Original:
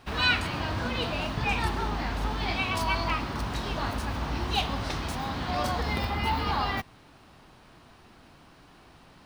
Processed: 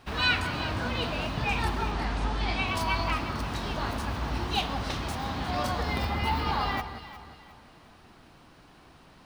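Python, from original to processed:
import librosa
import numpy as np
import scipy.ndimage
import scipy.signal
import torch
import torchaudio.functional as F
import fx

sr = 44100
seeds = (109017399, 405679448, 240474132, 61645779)

p1 = fx.steep_lowpass(x, sr, hz=9900.0, slope=48, at=(1.92, 2.67))
p2 = p1 + fx.echo_alternate(p1, sr, ms=178, hz=1700.0, feedback_pct=60, wet_db=-8.5, dry=0)
y = p2 * 10.0 ** (-1.0 / 20.0)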